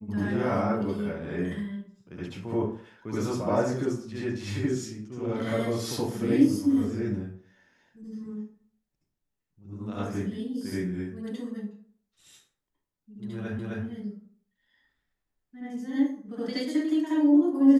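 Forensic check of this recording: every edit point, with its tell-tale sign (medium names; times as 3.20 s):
13.59 s: repeat of the last 0.26 s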